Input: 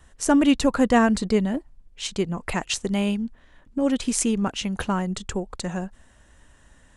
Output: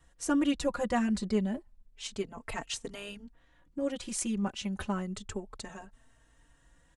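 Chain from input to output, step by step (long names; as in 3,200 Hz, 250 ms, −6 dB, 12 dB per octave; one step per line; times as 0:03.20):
barber-pole flanger 3.8 ms +0.3 Hz
level −6.5 dB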